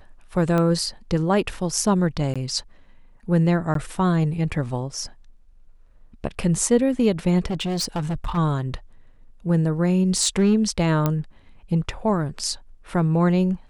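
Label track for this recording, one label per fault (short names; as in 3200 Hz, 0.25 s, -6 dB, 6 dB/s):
0.580000	0.580000	pop -12 dBFS
2.340000	2.360000	gap 16 ms
3.740000	3.750000	gap 13 ms
7.460000	8.380000	clipped -21.5 dBFS
10.180000	10.550000	clipped -12.5 dBFS
11.060000	11.060000	pop -8 dBFS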